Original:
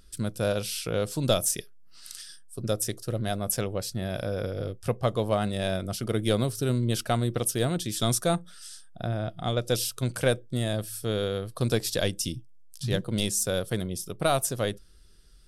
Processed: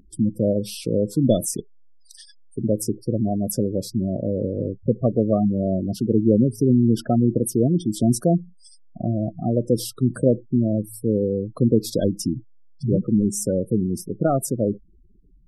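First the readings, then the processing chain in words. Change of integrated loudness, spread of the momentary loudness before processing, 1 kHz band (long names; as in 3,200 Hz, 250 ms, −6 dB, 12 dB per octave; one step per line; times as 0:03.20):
+6.5 dB, 8 LU, −0.5 dB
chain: parametric band 250 Hz +13.5 dB 1.7 octaves
gate on every frequency bin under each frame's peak −15 dB strong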